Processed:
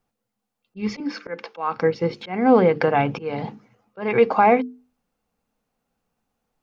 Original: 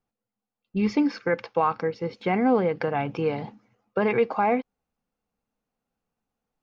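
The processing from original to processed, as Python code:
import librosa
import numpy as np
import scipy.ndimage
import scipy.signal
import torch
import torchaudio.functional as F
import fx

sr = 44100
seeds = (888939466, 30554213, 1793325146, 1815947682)

y = fx.steep_highpass(x, sr, hz=170.0, slope=36, at=(1.0, 1.74))
y = fx.auto_swell(y, sr, attack_ms=280.0)
y = fx.hum_notches(y, sr, base_hz=50, count=9)
y = y * 10.0 ** (7.5 / 20.0)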